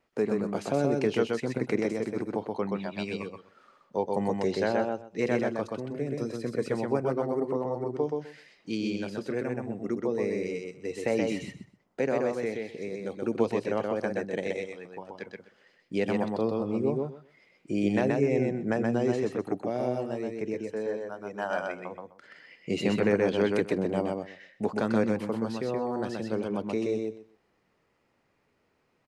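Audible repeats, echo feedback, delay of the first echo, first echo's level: 3, 17%, 127 ms, -3.0 dB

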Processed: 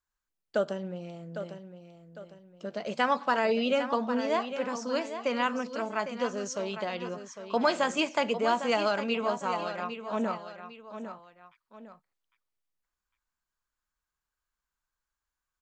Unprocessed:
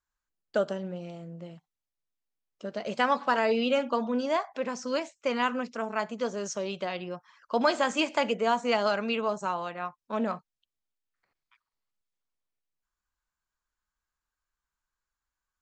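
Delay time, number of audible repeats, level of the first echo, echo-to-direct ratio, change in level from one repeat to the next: 804 ms, 2, -10.0 dB, -9.5 dB, -8.5 dB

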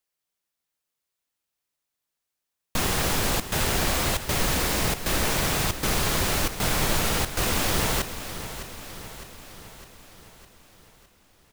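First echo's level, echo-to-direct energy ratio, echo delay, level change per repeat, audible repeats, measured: -12.0 dB, -10.0 dB, 608 ms, -4.5 dB, 5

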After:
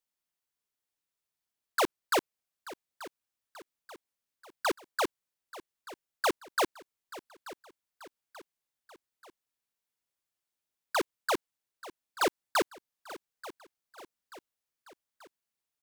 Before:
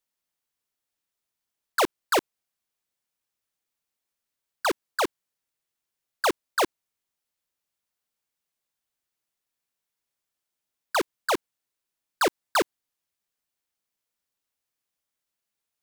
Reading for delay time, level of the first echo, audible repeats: 884 ms, -17.0 dB, 3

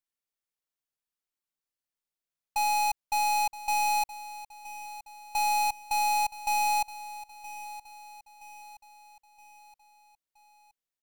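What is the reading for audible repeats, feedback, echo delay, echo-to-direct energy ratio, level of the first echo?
4, 48%, 971 ms, -14.5 dB, -15.5 dB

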